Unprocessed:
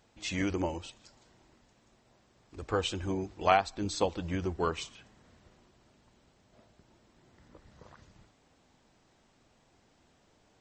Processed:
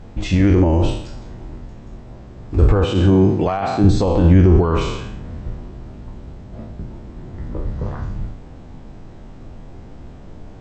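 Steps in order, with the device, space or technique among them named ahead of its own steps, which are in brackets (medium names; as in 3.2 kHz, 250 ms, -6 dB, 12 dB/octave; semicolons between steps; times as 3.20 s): spectral sustain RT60 0.68 s; 2.85–3.84 s: high-pass 100 Hz 24 dB/octave; loud club master (compression 2.5:1, threshold -31 dBFS, peak gain reduction 9.5 dB; hard clipper -20.5 dBFS, distortion -28 dB; loudness maximiser +29 dB); tilt EQ -4 dB/octave; trim -12 dB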